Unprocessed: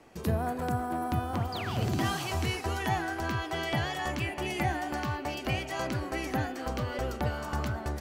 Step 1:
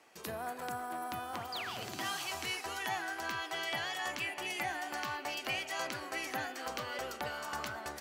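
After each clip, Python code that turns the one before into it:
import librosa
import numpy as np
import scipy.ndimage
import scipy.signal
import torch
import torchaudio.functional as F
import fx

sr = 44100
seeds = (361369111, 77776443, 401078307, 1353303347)

y = fx.rider(x, sr, range_db=10, speed_s=0.5)
y = fx.highpass(y, sr, hz=1300.0, slope=6)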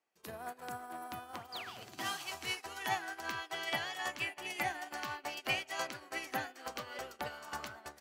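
y = fx.upward_expand(x, sr, threshold_db=-52.0, expansion=2.5)
y = y * librosa.db_to_amplitude(4.0)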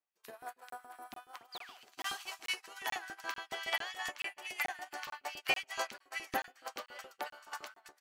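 y = fx.filter_lfo_highpass(x, sr, shape='saw_up', hz=7.1, low_hz=230.0, high_hz=2400.0, q=1.0)
y = fx.buffer_crackle(y, sr, first_s=0.7, period_s=0.44, block=1024, kind='zero')
y = fx.upward_expand(y, sr, threshold_db=-60.0, expansion=1.5)
y = y * librosa.db_to_amplitude(3.5)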